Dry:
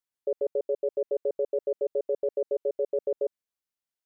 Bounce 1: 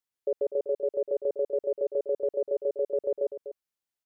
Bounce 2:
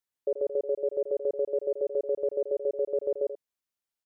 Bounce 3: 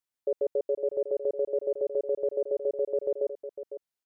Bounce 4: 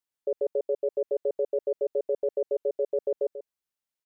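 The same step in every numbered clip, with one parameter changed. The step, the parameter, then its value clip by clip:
single-tap delay, delay time: 247, 84, 504, 139 milliseconds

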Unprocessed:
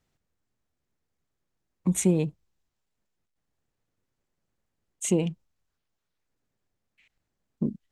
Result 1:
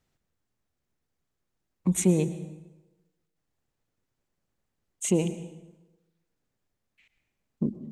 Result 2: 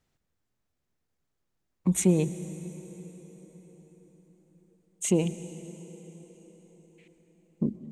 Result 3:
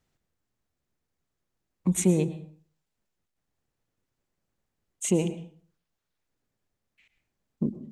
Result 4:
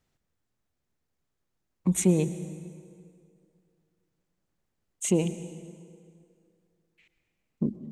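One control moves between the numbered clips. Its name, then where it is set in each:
dense smooth reverb, RT60: 1.1, 5.1, 0.5, 2.3 seconds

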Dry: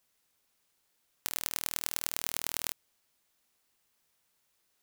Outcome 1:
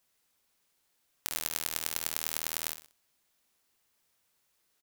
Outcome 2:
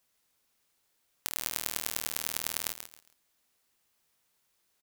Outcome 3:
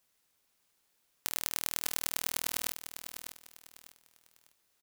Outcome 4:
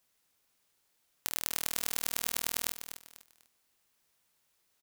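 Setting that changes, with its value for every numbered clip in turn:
repeating echo, delay time: 64, 136, 599, 247 milliseconds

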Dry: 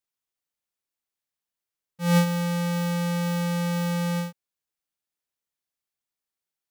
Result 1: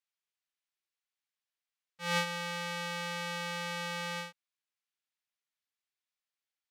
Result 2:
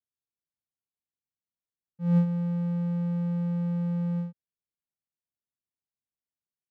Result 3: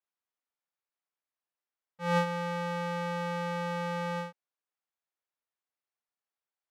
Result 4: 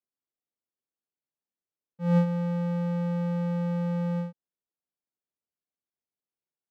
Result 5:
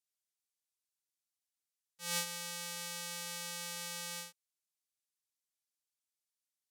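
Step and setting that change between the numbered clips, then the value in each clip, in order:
resonant band-pass, frequency: 2,500, 110, 970, 290, 7,900 Hertz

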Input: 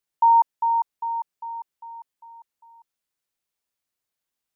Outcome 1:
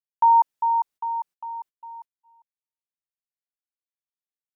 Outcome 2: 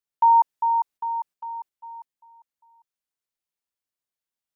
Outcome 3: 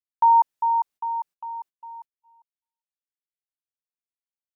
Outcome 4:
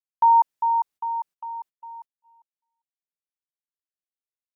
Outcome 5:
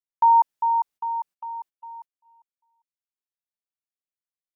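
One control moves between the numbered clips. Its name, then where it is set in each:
noise gate, range: −59, −7, −46, −32, −20 decibels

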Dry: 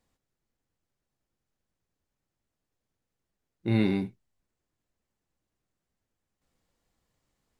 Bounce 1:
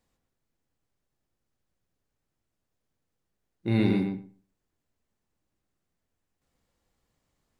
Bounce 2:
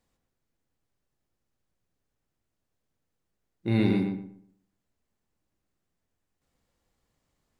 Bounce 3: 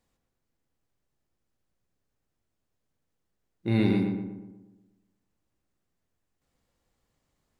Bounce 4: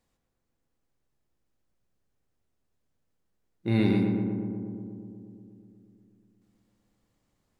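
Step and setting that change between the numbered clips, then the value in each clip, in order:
feedback echo with a low-pass in the loop, feedback: 16, 30, 52, 79%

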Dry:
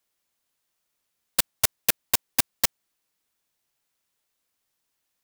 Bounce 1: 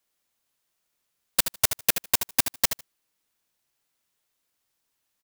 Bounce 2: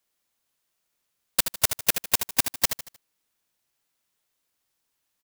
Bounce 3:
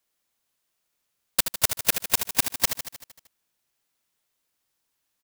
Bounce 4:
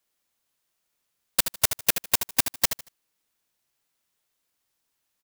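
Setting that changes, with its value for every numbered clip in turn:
repeating echo, feedback: 15, 38, 62, 24%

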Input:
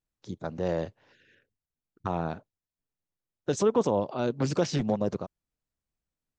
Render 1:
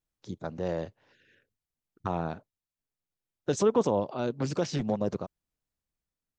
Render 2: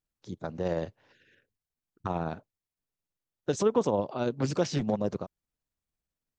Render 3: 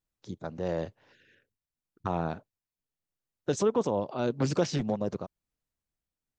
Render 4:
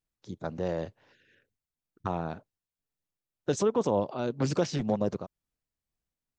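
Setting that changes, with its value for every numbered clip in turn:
amplitude tremolo, speed: 0.55, 18, 0.9, 2 Hertz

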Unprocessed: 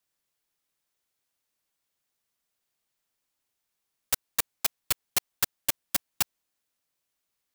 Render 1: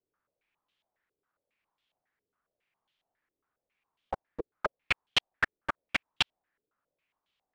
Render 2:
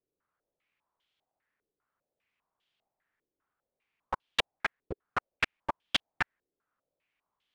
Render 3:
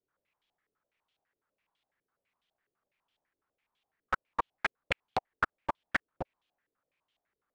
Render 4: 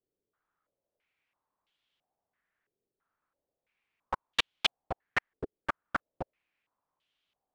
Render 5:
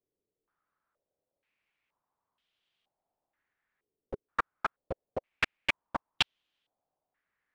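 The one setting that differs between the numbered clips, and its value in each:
low-pass on a step sequencer, speed: 7.3, 5, 12, 3, 2.1 Hertz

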